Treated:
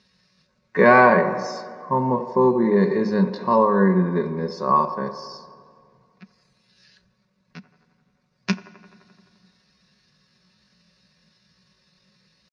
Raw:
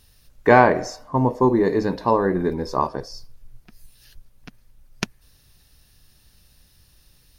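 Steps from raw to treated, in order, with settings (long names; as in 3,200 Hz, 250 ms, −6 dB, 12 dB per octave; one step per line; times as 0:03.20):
thirty-one-band graphic EQ 315 Hz −8 dB, 800 Hz −12 dB, 1,250 Hz −5 dB, 3,150 Hz −10 dB
tempo change 0.59×
loudspeaker in its box 190–5,100 Hz, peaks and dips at 190 Hz +8 dB, 330 Hz −4 dB, 1,100 Hz +6 dB
comb filter 5.4 ms, depth 48%
on a send: delay with a band-pass on its return 86 ms, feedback 73%, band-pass 700 Hz, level −13 dB
on the sum: feedback delay network reverb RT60 2.4 s, low-frequency decay 1.2×, high-frequency decay 0.55×, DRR 18 dB
level +1.5 dB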